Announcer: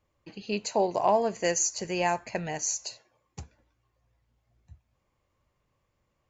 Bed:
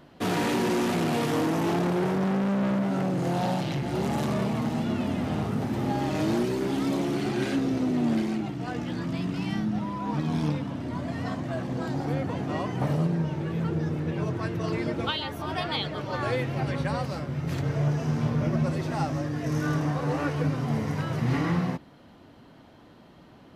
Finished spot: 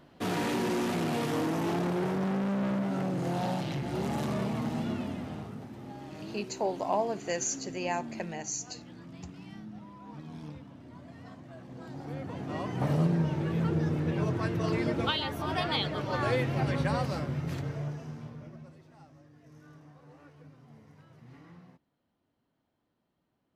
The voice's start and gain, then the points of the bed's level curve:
5.85 s, −5.5 dB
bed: 0:04.87 −4.5 dB
0:05.76 −16.5 dB
0:11.58 −16.5 dB
0:13.02 −0.5 dB
0:17.26 −0.5 dB
0:18.86 −27 dB

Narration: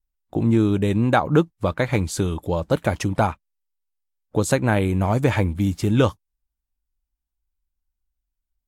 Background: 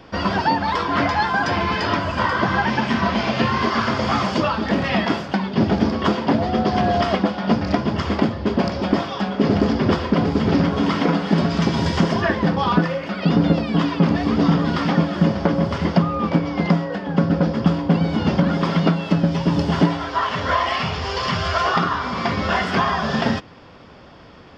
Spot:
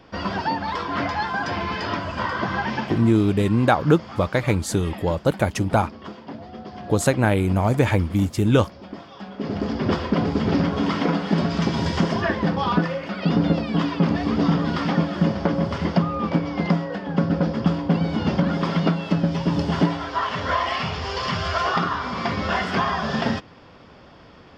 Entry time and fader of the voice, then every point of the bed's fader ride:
2.55 s, +0.5 dB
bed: 0:02.80 −5.5 dB
0:03.10 −18 dB
0:08.95 −18 dB
0:09.95 −3 dB

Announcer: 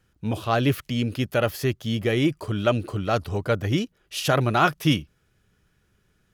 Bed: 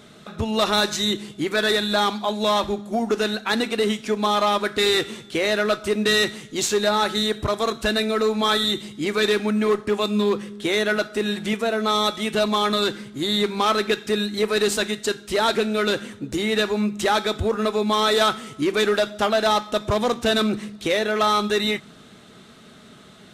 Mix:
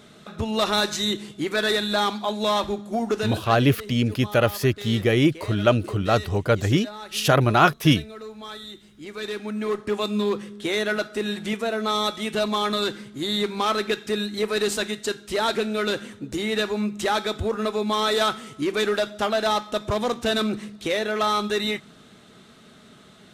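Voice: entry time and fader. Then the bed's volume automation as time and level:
3.00 s, +3.0 dB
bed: 0:03.13 −2 dB
0:03.72 −17.5 dB
0:08.78 −17.5 dB
0:09.92 −3 dB

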